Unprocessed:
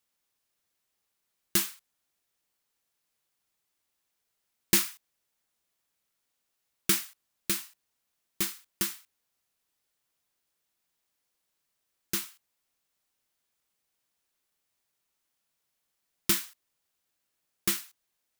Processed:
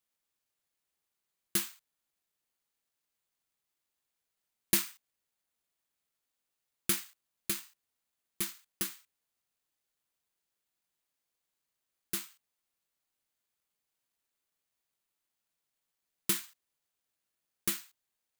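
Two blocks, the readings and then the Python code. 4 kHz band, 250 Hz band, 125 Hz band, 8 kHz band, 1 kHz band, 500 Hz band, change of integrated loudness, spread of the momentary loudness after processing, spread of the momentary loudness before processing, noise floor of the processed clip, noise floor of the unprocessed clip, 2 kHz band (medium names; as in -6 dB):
-6.0 dB, -5.5 dB, -5.5 dB, -4.0 dB, -5.5 dB, -5.5 dB, -4.5 dB, 13 LU, 16 LU, under -85 dBFS, -81 dBFS, -5.5 dB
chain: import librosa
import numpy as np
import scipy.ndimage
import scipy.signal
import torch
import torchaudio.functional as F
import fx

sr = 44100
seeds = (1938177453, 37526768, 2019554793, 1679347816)

y = (np.kron(scipy.signal.resample_poly(x, 1, 4), np.eye(4)[0]) * 4)[:len(x)]
y = y * librosa.db_to_amplitude(-5.5)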